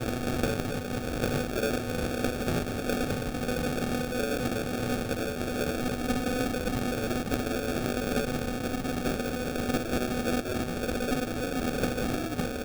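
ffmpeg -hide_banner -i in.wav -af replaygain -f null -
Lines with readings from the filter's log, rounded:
track_gain = +12.5 dB
track_peak = 0.117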